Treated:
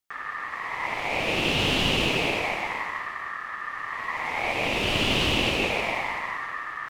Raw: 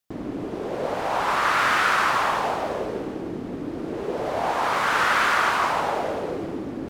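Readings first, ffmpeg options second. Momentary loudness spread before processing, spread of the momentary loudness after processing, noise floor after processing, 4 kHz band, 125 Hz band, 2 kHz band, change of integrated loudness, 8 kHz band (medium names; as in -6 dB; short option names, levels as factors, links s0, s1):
12 LU, 11 LU, -36 dBFS, +6.0 dB, +5.0 dB, -2.0 dB, -2.0 dB, -1.5 dB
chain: -af "aeval=exprs='val(0)*sin(2*PI*1500*n/s)':c=same"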